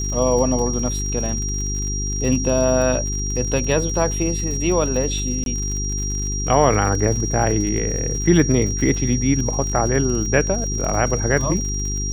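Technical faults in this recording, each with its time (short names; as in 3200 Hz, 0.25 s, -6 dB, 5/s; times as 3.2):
crackle 68/s -27 dBFS
hum 50 Hz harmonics 8 -25 dBFS
tone 5700 Hz -26 dBFS
5.44–5.46 gap 22 ms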